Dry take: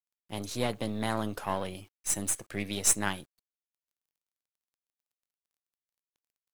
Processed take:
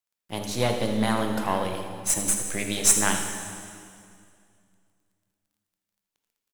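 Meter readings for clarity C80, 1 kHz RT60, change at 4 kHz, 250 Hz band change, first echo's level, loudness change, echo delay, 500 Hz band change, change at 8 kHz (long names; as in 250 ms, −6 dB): 5.5 dB, 2.2 s, +7.0 dB, +7.0 dB, −12.5 dB, +6.5 dB, 80 ms, +7.0 dB, +7.0 dB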